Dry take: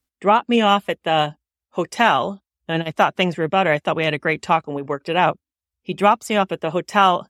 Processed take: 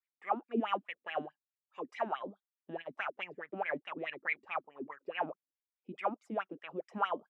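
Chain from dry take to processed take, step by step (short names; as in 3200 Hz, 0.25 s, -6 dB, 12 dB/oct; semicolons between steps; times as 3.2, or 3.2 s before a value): wah 4.7 Hz 240–2400 Hz, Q 7.8; mismatched tape noise reduction encoder only; gain -6.5 dB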